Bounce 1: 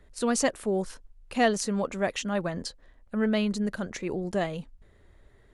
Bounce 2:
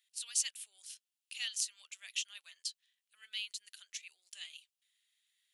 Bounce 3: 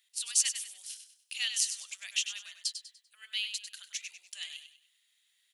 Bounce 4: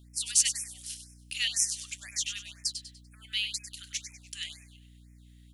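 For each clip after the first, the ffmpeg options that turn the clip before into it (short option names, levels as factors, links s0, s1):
-af "highpass=f=2900:t=q:w=2.8,aderivative,volume=0.75"
-af "highpass=420,aecho=1:1:98|196|294|392:0.355|0.128|0.046|0.0166,volume=2"
-af "aeval=exprs='val(0)+0.00158*(sin(2*PI*60*n/s)+sin(2*PI*2*60*n/s)/2+sin(2*PI*3*60*n/s)/3+sin(2*PI*4*60*n/s)/4+sin(2*PI*5*60*n/s)/5)':c=same,afftfilt=real='re*(1-between(b*sr/1024,720*pow(3700/720,0.5+0.5*sin(2*PI*2*pts/sr))/1.41,720*pow(3700/720,0.5+0.5*sin(2*PI*2*pts/sr))*1.41))':imag='im*(1-between(b*sr/1024,720*pow(3700/720,0.5+0.5*sin(2*PI*2*pts/sr))/1.41,720*pow(3700/720,0.5+0.5*sin(2*PI*2*pts/sr))*1.41))':win_size=1024:overlap=0.75,volume=1.41"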